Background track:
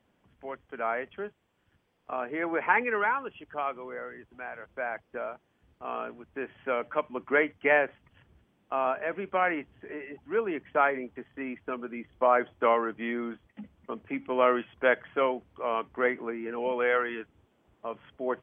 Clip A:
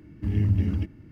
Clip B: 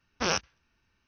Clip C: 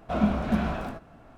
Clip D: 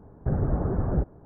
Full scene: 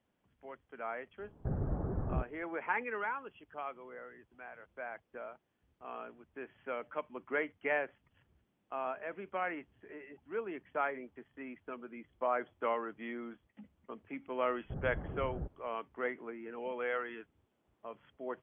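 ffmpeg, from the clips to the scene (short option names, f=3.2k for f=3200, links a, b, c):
-filter_complex "[4:a]asplit=2[a][b];[0:a]volume=-10dB[c];[a]atrim=end=1.25,asetpts=PTS-STARTPTS,volume=-10dB,afade=t=in:d=0.004:c=hsin,afade=t=out:st=1.246:d=0.004:c=hsin,adelay=1190[d];[b]atrim=end=1.25,asetpts=PTS-STARTPTS,volume=-16dB,afade=t=in:d=0.004:c=hsin,afade=t=out:st=1.246:d=0.004:c=hsin,adelay=636804S[e];[c][d][e]amix=inputs=3:normalize=0"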